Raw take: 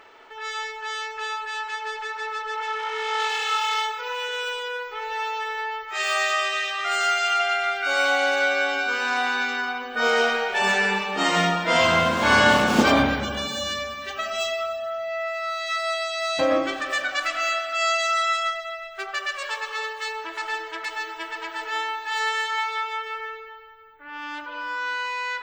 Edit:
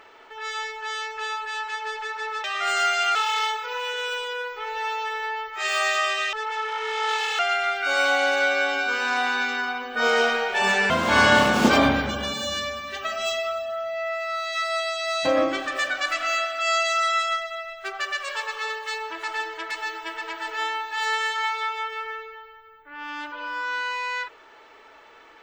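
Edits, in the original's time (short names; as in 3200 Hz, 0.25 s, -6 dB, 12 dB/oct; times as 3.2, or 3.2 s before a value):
2.44–3.5 swap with 6.68–7.39
10.9–12.04 cut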